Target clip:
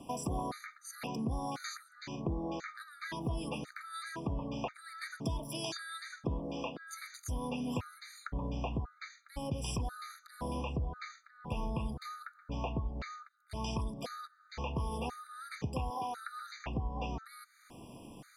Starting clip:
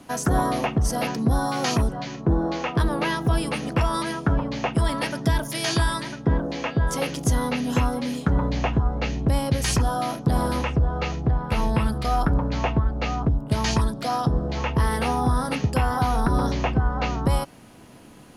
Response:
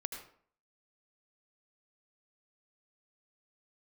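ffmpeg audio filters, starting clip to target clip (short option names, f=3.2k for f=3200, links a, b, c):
-filter_complex "[0:a]asettb=1/sr,asplit=3[a][b][c];[a]atrim=end=15.904[d];[b]atrim=start=15.9:end=16.56,asetpts=PTS-STARTPTS,afade=t=in:d=0.004:c=qsin,afade=t=out:st=0.656:d=0.004:c=qsin,highpass=370[e];[c]atrim=start=16.556[f];[d][e]acrossfade=d=0.004:c1=hsin:c2=qsin[g];[g][f]acrossfade=d=0.004:c1=qsin:c2=hsin,acompressor=threshold=-33dB:ratio=3,afftfilt=real='re*gt(sin(2*PI*0.96*pts/sr)*(1-2*mod(floor(b*sr/1024/1200),2)),0)':imag='im*gt(sin(2*PI*0.96*pts/sr)*(1-2*mod(floor(b*sr/1024/1200),2)),0)':win_size=1024:overlap=0.75,volume=-3dB"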